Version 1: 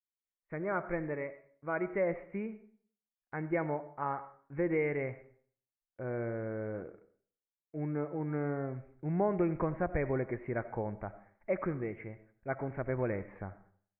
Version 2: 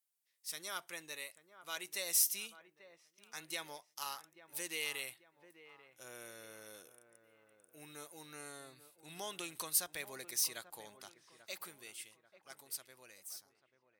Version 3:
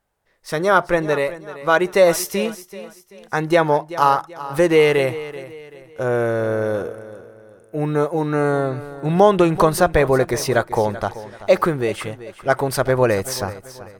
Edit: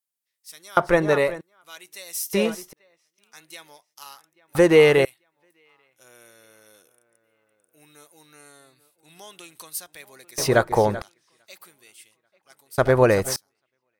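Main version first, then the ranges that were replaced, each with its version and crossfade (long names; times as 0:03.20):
2
0:00.77–0:01.41: punch in from 3
0:02.33–0:02.73: punch in from 3
0:04.55–0:05.05: punch in from 3
0:10.38–0:11.02: punch in from 3
0:12.78–0:13.36: punch in from 3
not used: 1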